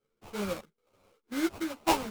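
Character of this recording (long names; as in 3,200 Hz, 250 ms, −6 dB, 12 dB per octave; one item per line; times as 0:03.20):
sample-and-hold tremolo 4.3 Hz
aliases and images of a low sample rate 1,800 Hz, jitter 20%
a shimmering, thickened sound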